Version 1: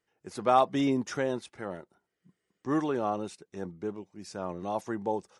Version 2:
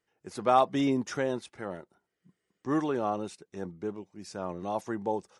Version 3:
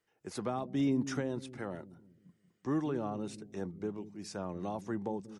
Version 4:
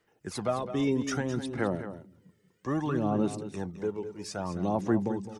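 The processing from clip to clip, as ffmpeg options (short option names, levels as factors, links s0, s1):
-af anull
-filter_complex "[0:a]acrossover=split=290[s0][s1];[s0]aecho=1:1:186|372|558|744|930:0.355|0.153|0.0656|0.0282|0.0121[s2];[s1]acompressor=threshold=0.0126:ratio=5[s3];[s2][s3]amix=inputs=2:normalize=0"
-af "aphaser=in_gain=1:out_gain=1:delay=2.3:decay=0.55:speed=0.62:type=sinusoidal,aecho=1:1:212:0.266,volume=1.68"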